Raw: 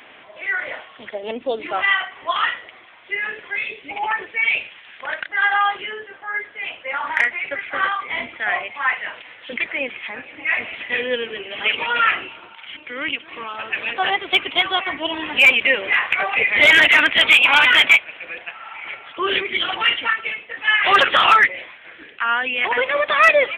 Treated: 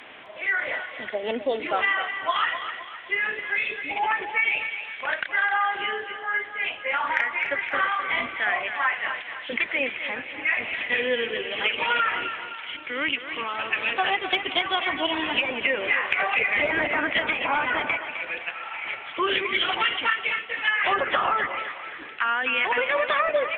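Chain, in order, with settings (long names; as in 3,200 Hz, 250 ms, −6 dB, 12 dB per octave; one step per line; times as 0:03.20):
treble cut that deepens with the level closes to 950 Hz, closed at −10 dBFS
downward compressor, threshold −20 dBFS, peak gain reduction 7.5 dB
feedback echo with a high-pass in the loop 258 ms, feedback 46%, high-pass 420 Hz, level −9 dB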